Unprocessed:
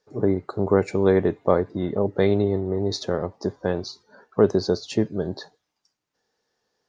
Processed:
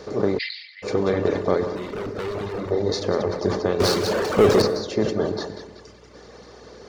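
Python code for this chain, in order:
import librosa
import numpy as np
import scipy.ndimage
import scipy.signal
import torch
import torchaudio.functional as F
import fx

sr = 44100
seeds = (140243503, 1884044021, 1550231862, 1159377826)

p1 = fx.bin_compress(x, sr, power=0.4)
p2 = p1 + fx.echo_feedback(p1, sr, ms=188, feedback_pct=49, wet_db=-7.0, dry=0)
p3 = fx.overload_stage(p2, sr, gain_db=18.0, at=(1.75, 2.7), fade=0.02)
p4 = fx.power_curve(p3, sr, exponent=0.5, at=(3.8, 4.62))
p5 = fx.dereverb_blind(p4, sr, rt60_s=1.4)
p6 = fx.rev_plate(p5, sr, seeds[0], rt60_s=1.1, hf_ratio=0.4, predelay_ms=85, drr_db=11.5)
p7 = fx.add_hum(p6, sr, base_hz=60, snr_db=31)
p8 = fx.cheby1_bandpass(p7, sr, low_hz=1900.0, high_hz=4900.0, order=5, at=(0.37, 0.82), fade=0.02)
p9 = fx.sustainer(p8, sr, db_per_s=69.0)
y = F.gain(torch.from_numpy(p9), -5.0).numpy()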